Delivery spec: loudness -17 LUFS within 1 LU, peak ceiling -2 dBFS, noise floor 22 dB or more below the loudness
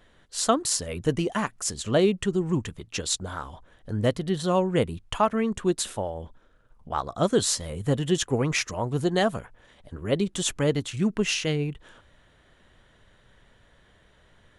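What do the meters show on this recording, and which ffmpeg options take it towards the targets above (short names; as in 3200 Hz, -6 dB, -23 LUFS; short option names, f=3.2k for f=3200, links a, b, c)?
loudness -26.5 LUFS; peak -7.0 dBFS; loudness target -17.0 LUFS
-> -af "volume=9.5dB,alimiter=limit=-2dB:level=0:latency=1"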